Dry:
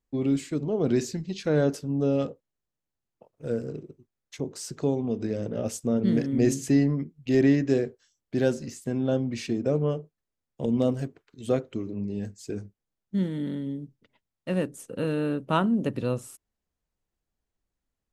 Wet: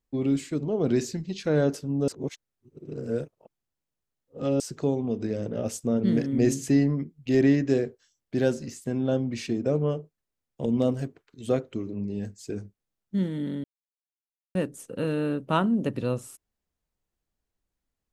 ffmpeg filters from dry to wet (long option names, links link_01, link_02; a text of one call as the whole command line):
ffmpeg -i in.wav -filter_complex "[0:a]asplit=5[link_01][link_02][link_03][link_04][link_05];[link_01]atrim=end=2.082[link_06];[link_02]atrim=start=2.078:end=4.602,asetpts=PTS-STARTPTS,areverse[link_07];[link_03]atrim=start=4.598:end=13.64,asetpts=PTS-STARTPTS,afade=type=out:start_time=9.038:duration=0.004:curve=hsin[link_08];[link_04]atrim=start=13.64:end=14.55,asetpts=PTS-STARTPTS,volume=0[link_09];[link_05]atrim=start=14.55,asetpts=PTS-STARTPTS,afade=type=in:duration=0.004:curve=hsin[link_10];[link_06][link_07]acrossfade=duration=0.004:curve1=hsin:curve2=hsin[link_11];[link_08][link_09][link_10]concat=n=3:v=0:a=1[link_12];[link_11][link_12]acrossfade=duration=0.004:curve1=hsin:curve2=hsin" out.wav